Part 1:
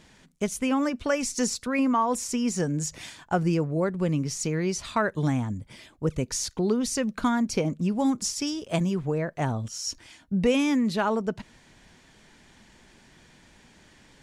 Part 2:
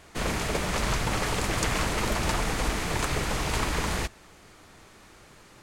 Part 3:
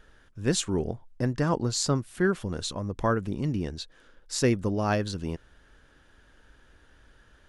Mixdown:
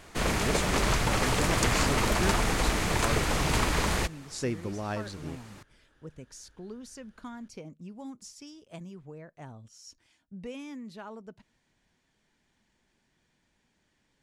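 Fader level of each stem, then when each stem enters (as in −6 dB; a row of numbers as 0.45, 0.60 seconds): −18.0, +1.0, −8.0 decibels; 0.00, 0.00, 0.00 seconds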